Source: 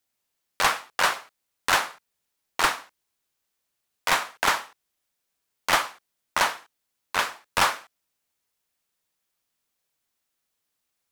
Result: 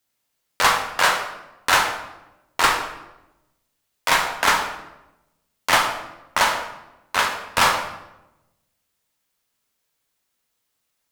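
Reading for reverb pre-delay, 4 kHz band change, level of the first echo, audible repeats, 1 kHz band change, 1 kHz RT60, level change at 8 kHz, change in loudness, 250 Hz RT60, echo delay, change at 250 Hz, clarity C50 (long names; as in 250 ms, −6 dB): 3 ms, +5.0 dB, no echo audible, no echo audible, +5.5 dB, 0.90 s, +4.5 dB, +4.5 dB, 1.2 s, no echo audible, +5.5 dB, 7.0 dB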